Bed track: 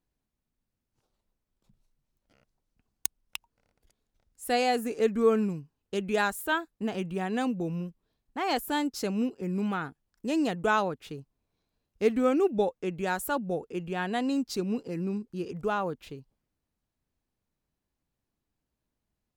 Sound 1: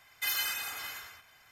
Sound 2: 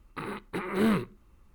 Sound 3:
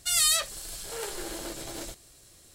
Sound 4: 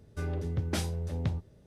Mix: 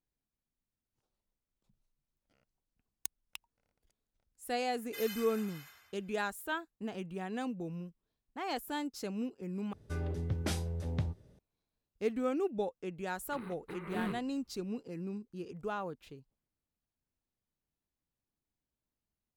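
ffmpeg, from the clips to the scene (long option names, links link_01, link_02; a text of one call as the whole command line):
ffmpeg -i bed.wav -i cue0.wav -i cue1.wav -i cue2.wav -i cue3.wav -filter_complex "[0:a]volume=-8.5dB,asplit=2[link_01][link_02];[link_01]atrim=end=9.734[link_03];[4:a]atrim=end=1.66,asetpts=PTS-STARTPTS,volume=-3dB[link_04];[link_02]atrim=start=11.386[link_05];[1:a]atrim=end=1.51,asetpts=PTS-STARTPTS,volume=-13dB,afade=type=in:duration=0.004:curve=hsin,afade=type=out:start_time=1.506:duration=0.004:curve=hsin,adelay=4710[link_06];[2:a]atrim=end=1.54,asetpts=PTS-STARTPTS,volume=-12.5dB,afade=type=in:duration=0.004:curve=hsin,afade=type=out:start_time=1.536:duration=0.004:curve=hsin,adelay=13150[link_07];[link_03][link_04]acrossfade=duration=0.004:curve1=hsin:curve2=hsin[link_08];[link_08][link_05]acrossfade=duration=0.004:curve1=hsin:curve2=hsin[link_09];[link_09][link_06][link_07]amix=inputs=3:normalize=0" out.wav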